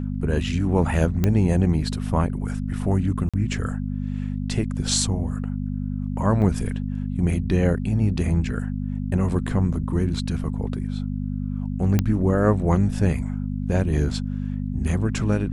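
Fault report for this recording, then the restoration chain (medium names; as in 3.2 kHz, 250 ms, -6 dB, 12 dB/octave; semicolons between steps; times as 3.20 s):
hum 50 Hz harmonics 5 -27 dBFS
1.24 s: pop -8 dBFS
3.29–3.34 s: dropout 46 ms
6.42 s: dropout 4 ms
11.99 s: pop -7 dBFS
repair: de-click; de-hum 50 Hz, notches 5; interpolate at 3.29 s, 46 ms; interpolate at 6.42 s, 4 ms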